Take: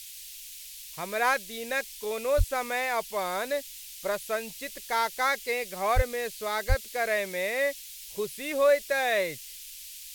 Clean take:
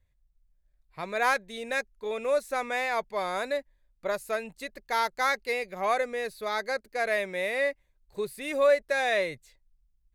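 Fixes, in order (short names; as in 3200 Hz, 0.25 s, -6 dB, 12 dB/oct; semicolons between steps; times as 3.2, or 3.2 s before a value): 2.37–2.49 HPF 140 Hz 24 dB/oct; 5.95–6.07 HPF 140 Hz 24 dB/oct; 6.68–6.8 HPF 140 Hz 24 dB/oct; noise print and reduce 23 dB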